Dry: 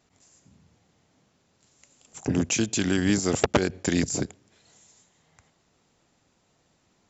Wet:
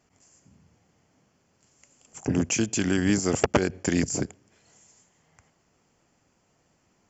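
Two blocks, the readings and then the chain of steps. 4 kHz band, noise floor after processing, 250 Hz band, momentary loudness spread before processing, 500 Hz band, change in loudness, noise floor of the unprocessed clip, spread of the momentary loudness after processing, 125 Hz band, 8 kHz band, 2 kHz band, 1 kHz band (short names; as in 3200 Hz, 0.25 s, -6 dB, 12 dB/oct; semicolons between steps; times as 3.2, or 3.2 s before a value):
-3.0 dB, -69 dBFS, 0.0 dB, 7 LU, 0.0 dB, 0.0 dB, -68 dBFS, 7 LU, 0.0 dB, n/a, -0.5 dB, 0.0 dB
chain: bell 3800 Hz -14 dB 0.23 oct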